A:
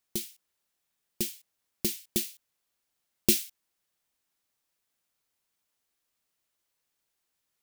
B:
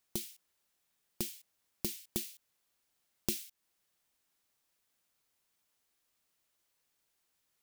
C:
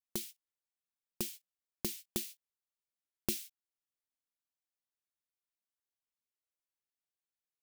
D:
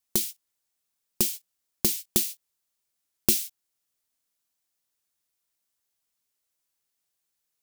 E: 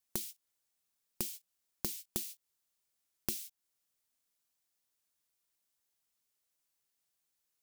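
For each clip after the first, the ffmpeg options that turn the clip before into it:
ffmpeg -i in.wav -af "acompressor=threshold=-37dB:ratio=3,volume=1.5dB" out.wav
ffmpeg -i in.wav -af "agate=range=-20dB:threshold=-47dB:ratio=16:detection=peak" out.wav
ffmpeg -i in.wav -af "bass=frequency=250:gain=1,treble=frequency=4000:gain=6,volume=9dB" out.wav
ffmpeg -i in.wav -af "acompressor=threshold=-35dB:ratio=3,volume=-2.5dB" out.wav

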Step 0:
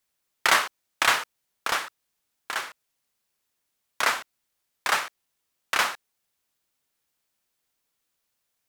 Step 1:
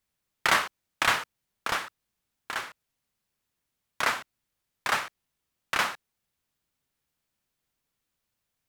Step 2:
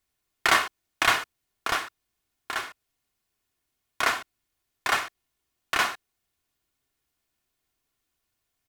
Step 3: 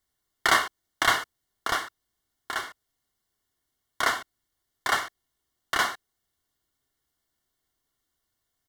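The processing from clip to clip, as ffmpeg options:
ffmpeg -i in.wav -af "bass=frequency=250:gain=9,treble=frequency=4000:gain=-3,volume=-2.5dB" out.wav
ffmpeg -i in.wav -af "aecho=1:1:2.8:0.43,volume=1.5dB" out.wav
ffmpeg -i in.wav -af "asuperstop=centerf=2500:order=4:qfactor=4.3" out.wav

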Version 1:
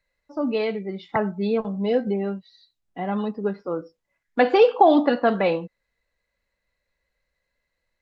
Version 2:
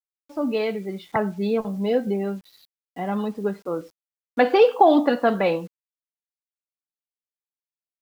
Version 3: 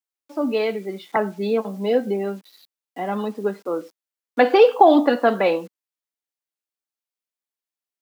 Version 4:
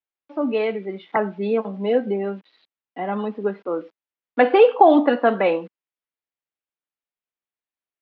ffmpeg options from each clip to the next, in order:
ffmpeg -i in.wav -af "acrusher=bits=8:mix=0:aa=0.000001" out.wav
ffmpeg -i in.wav -af "highpass=frequency=220:width=0.5412,highpass=frequency=220:width=1.3066,volume=2.5dB" out.wav
ffmpeg -i in.wav -af "lowpass=frequency=3200:width=0.5412,lowpass=frequency=3200:width=1.3066" out.wav

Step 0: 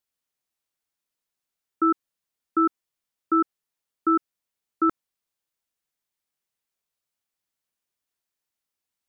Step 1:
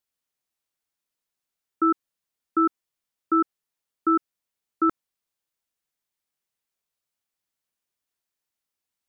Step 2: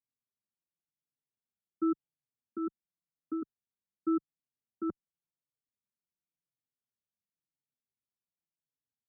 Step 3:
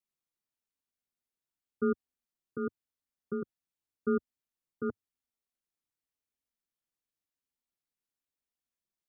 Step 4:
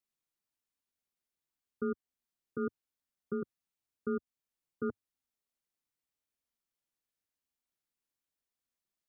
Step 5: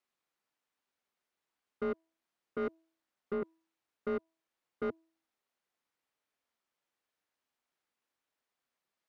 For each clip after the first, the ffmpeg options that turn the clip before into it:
ffmpeg -i in.wav -af anull out.wav
ffmpeg -i in.wav -filter_complex "[0:a]bandpass=frequency=150:width_type=q:width=1.3:csg=0,asplit=2[link_01][link_02];[link_02]adelay=4.3,afreqshift=-0.91[link_03];[link_01][link_03]amix=inputs=2:normalize=1,volume=2.5dB" out.wav
ffmpeg -i in.wav -af "aeval=exprs='val(0)*sin(2*PI*100*n/s)':channel_layout=same,volume=3.5dB" out.wav
ffmpeg -i in.wav -af "alimiter=level_in=0.5dB:limit=-24dB:level=0:latency=1:release=364,volume=-0.5dB" out.wav
ffmpeg -i in.wav -filter_complex "[0:a]asplit=2[link_01][link_02];[link_02]highpass=frequency=720:poles=1,volume=20dB,asoftclip=type=tanh:threshold=-24dB[link_03];[link_01][link_03]amix=inputs=2:normalize=0,lowpass=frequency=1300:poles=1,volume=-6dB,bandreject=frequency=325.8:width_type=h:width=4,bandreject=frequency=651.6:width_type=h:width=4,bandreject=frequency=977.4:width_type=h:width=4,volume=-1.5dB" out.wav

